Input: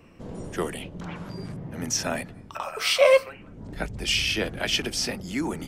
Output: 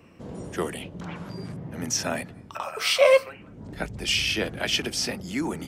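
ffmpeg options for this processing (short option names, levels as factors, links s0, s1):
-af "highpass=60"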